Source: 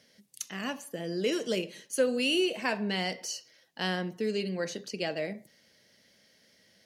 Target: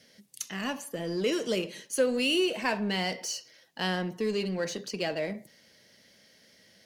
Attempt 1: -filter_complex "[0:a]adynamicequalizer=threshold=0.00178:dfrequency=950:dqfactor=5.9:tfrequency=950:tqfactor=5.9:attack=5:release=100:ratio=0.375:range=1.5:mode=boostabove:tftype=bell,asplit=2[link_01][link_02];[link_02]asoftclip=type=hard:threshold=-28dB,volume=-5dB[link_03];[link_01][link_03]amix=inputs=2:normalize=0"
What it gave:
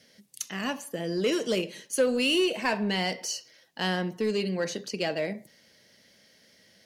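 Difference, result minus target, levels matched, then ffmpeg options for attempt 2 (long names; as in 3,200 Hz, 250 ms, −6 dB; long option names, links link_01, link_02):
hard clipping: distortion −7 dB
-filter_complex "[0:a]adynamicequalizer=threshold=0.00178:dfrequency=950:dqfactor=5.9:tfrequency=950:tqfactor=5.9:attack=5:release=100:ratio=0.375:range=1.5:mode=boostabove:tftype=bell,asplit=2[link_01][link_02];[link_02]asoftclip=type=hard:threshold=-39.5dB,volume=-5dB[link_03];[link_01][link_03]amix=inputs=2:normalize=0"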